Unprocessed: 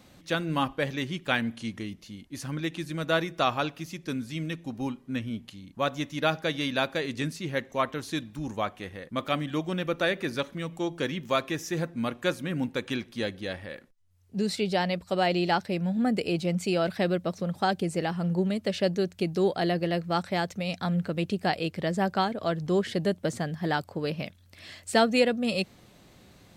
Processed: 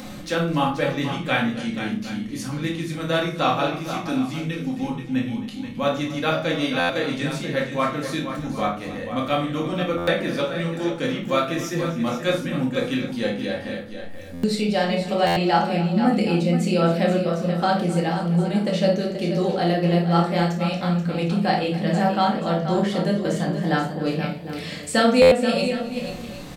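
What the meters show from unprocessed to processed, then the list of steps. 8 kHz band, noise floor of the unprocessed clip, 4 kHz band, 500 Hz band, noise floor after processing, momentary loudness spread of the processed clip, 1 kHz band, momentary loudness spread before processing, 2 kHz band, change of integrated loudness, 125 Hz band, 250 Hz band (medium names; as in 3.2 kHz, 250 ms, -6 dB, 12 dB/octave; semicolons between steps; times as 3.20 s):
+5.0 dB, -56 dBFS, +4.5 dB, +6.5 dB, -34 dBFS, 8 LU, +6.5 dB, 9 LU, +4.5 dB, +6.5 dB, +7.5 dB, +7.5 dB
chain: doubling 30 ms -10.5 dB; upward compressor, threshold -30 dBFS; peaking EQ 93 Hz -5.5 dB 0.31 oct; on a send: multi-tap echo 54/264/481/758 ms -11.5/-17/-9.5/-16 dB; on the sum: simulated room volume 340 m³, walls furnished, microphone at 2.1 m; buffer glitch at 6.79/9.97/14.33/15.26/25.21 s, samples 512, times 8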